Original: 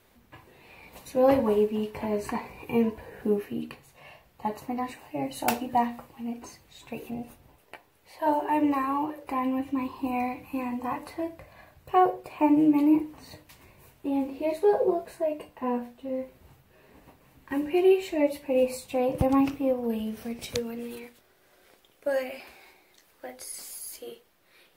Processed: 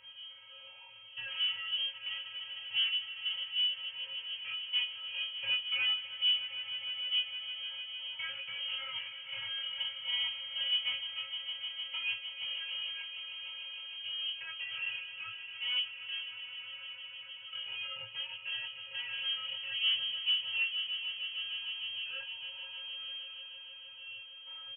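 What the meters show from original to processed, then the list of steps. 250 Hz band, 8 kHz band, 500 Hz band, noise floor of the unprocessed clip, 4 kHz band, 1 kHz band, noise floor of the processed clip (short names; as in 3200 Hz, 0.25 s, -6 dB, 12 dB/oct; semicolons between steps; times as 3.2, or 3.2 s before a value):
under -40 dB, under -35 dB, under -35 dB, -63 dBFS, +17.0 dB, -26.0 dB, -51 dBFS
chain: stepped spectrum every 0.1 s; notch 770 Hz, Q 25; in parallel at -3 dB: upward compressor, threshold -27 dBFS; on the sum: limiter -14 dBFS, peak gain reduction 7 dB; sample leveller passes 3; level quantiser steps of 20 dB; metallic resonator 230 Hz, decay 0.24 s, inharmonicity 0.008; hard clip -25.5 dBFS, distortion -12 dB; air absorption 460 m; doubler 21 ms -3.5 dB; swelling echo 0.153 s, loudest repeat 5, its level -14 dB; inverted band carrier 3200 Hz; gain -4 dB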